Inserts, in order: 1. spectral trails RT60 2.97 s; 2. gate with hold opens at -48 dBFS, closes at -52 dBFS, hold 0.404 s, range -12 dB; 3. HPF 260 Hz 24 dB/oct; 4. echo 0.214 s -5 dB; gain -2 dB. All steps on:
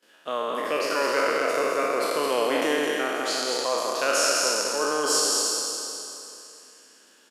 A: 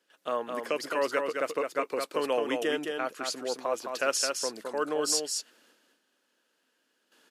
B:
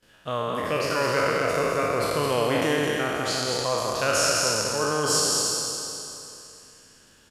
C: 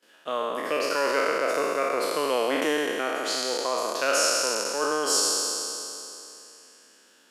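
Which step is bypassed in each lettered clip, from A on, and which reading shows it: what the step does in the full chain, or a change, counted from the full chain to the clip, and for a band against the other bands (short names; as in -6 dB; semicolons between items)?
1, crest factor change +2.0 dB; 3, 250 Hz band +2.0 dB; 4, loudness change -1.0 LU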